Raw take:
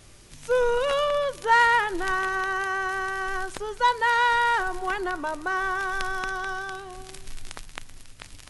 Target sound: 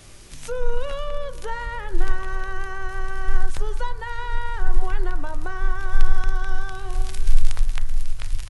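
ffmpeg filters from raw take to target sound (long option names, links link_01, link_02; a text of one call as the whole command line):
ffmpeg -i in.wav -filter_complex "[0:a]acrossover=split=260[link_01][link_02];[link_02]acompressor=threshold=-37dB:ratio=5[link_03];[link_01][link_03]amix=inputs=2:normalize=0,asubboost=boost=11.5:cutoff=64,bandreject=frequency=66.19:width_type=h:width=4,bandreject=frequency=132.38:width_type=h:width=4,bandreject=frequency=198.57:width_type=h:width=4,bandreject=frequency=264.76:width_type=h:width=4,bandreject=frequency=330.95:width_type=h:width=4,bandreject=frequency=397.14:width_type=h:width=4,bandreject=frequency=463.33:width_type=h:width=4,bandreject=frequency=529.52:width_type=h:width=4,bandreject=frequency=595.71:width_type=h:width=4,bandreject=frequency=661.9:width_type=h:width=4,bandreject=frequency=728.09:width_type=h:width=4,bandreject=frequency=794.28:width_type=h:width=4,bandreject=frequency=860.47:width_type=h:width=4,bandreject=frequency=926.66:width_type=h:width=4,bandreject=frequency=992.85:width_type=h:width=4,bandreject=frequency=1059.04:width_type=h:width=4,bandreject=frequency=1125.23:width_type=h:width=4,bandreject=frequency=1191.42:width_type=h:width=4,bandreject=frequency=1257.61:width_type=h:width=4,bandreject=frequency=1323.8:width_type=h:width=4,bandreject=frequency=1389.99:width_type=h:width=4,bandreject=frequency=1456.18:width_type=h:width=4,bandreject=frequency=1522.37:width_type=h:width=4,bandreject=frequency=1588.56:width_type=h:width=4,bandreject=frequency=1654.75:width_type=h:width=4,bandreject=frequency=1720.94:width_type=h:width=4,bandreject=frequency=1787.13:width_type=h:width=4,bandreject=frequency=1853.32:width_type=h:width=4,bandreject=frequency=1919.51:width_type=h:width=4,bandreject=frequency=1985.7:width_type=h:width=4,bandreject=frequency=2051.89:width_type=h:width=4,asplit=2[link_04][link_05];[link_05]adelay=615,lowpass=frequency=2000:poles=1,volume=-18dB,asplit=2[link_06][link_07];[link_07]adelay=615,lowpass=frequency=2000:poles=1,volume=0.53,asplit=2[link_08][link_09];[link_09]adelay=615,lowpass=frequency=2000:poles=1,volume=0.53,asplit=2[link_10][link_11];[link_11]adelay=615,lowpass=frequency=2000:poles=1,volume=0.53[link_12];[link_06][link_08][link_10][link_12]amix=inputs=4:normalize=0[link_13];[link_04][link_13]amix=inputs=2:normalize=0,volume=5dB" out.wav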